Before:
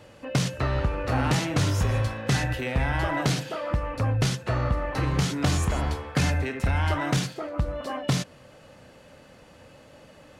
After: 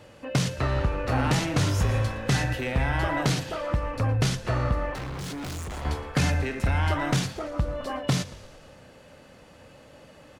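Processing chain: 4.94–5.85 s: overload inside the chain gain 33 dB; frequency-shifting echo 114 ms, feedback 60%, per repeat -41 Hz, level -18 dB

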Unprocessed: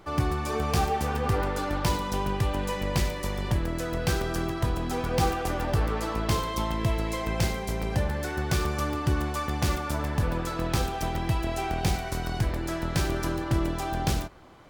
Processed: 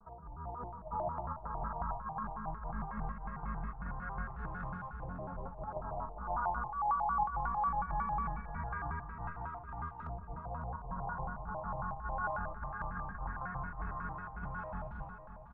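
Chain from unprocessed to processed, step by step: FFT filter 170 Hz 0 dB, 270 Hz -18 dB, 600 Hz -14 dB, 1.1 kHz +11 dB, 2.6 kHz -29 dB; compressor with a negative ratio -29 dBFS, ratio -0.5; distance through air 210 m; feedback comb 190 Hz, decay 1.1 s, mix 80%; early reflections 40 ms -8 dB, 65 ms -14.5 dB; LFO low-pass saw up 0.21 Hz 620–3200 Hz; wide varispeed 0.946×; comb 5 ms, depth 92%; delay 552 ms -10 dB; vibrato with a chosen wave square 5.5 Hz, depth 250 cents

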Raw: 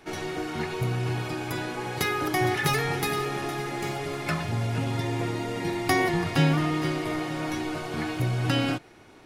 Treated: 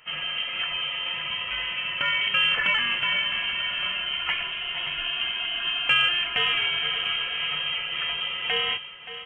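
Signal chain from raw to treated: high-pass 350 Hz 24 dB/octave; frequency inversion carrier 3.5 kHz; saturation -10 dBFS, distortion -36 dB; on a send: feedback delay 575 ms, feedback 49%, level -12 dB; on the sum: dynamic bell 2.7 kHz, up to +5 dB, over -42 dBFS, Q 0.92

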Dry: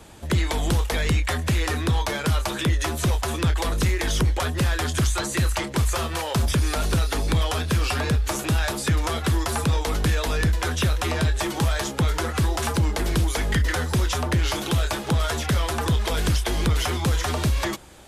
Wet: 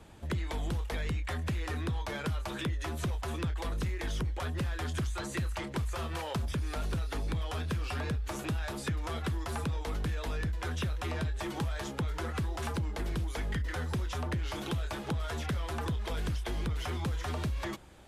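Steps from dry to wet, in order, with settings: tone controls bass +3 dB, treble -6 dB; compression, threshold -22 dBFS, peak gain reduction 8 dB; trim -8.5 dB

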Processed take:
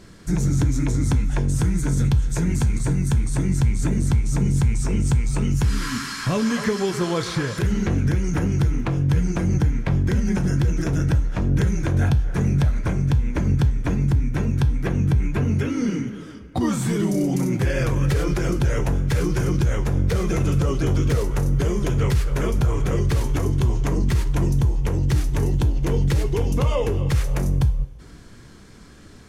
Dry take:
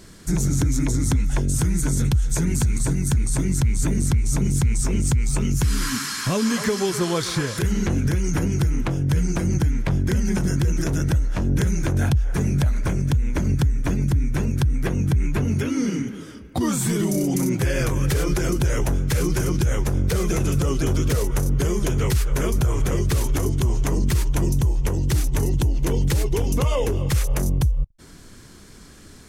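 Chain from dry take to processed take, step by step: treble shelf 6.1 kHz -11.5 dB; two-slope reverb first 0.4 s, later 2.2 s, from -18 dB, DRR 8.5 dB

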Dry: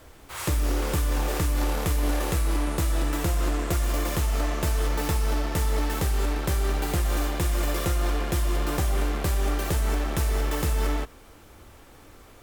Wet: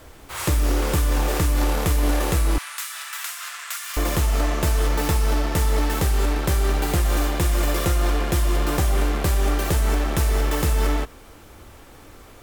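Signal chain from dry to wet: 2.58–3.97 s: high-pass 1.3 kHz 24 dB/octave; trim +4.5 dB

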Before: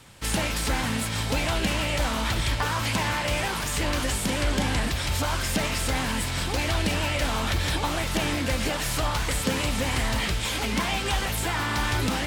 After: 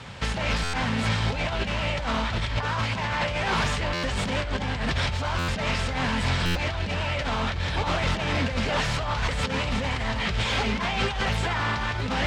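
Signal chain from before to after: high-pass 47 Hz 12 dB/octave; peaking EQ 310 Hz -14.5 dB 0.22 oct; compressor with a negative ratio -30 dBFS, ratio -0.5; saturation -25.5 dBFS, distortion -14 dB; distance through air 140 m; buffer glitch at 0.63/3.93/5.38/6.45 s, samples 512, times 8; trim +8 dB

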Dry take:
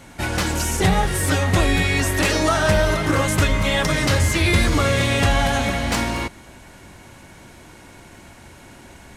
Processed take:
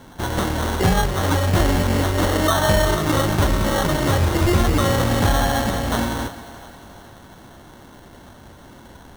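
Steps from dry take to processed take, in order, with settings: sample-and-hold 18×; two-band feedback delay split 460 Hz, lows 162 ms, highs 352 ms, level -15.5 dB

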